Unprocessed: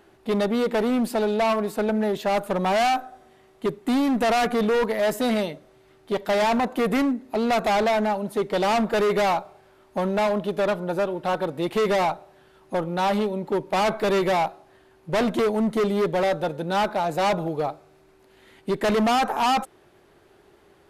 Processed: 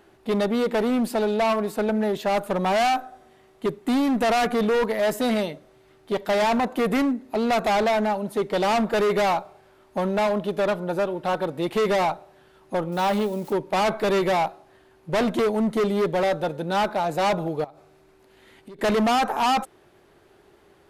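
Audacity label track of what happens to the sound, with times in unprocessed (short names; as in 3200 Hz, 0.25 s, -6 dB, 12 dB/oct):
12.920000	13.530000	switching spikes of -34.5 dBFS
17.640000	18.790000	compressor 16:1, threshold -39 dBFS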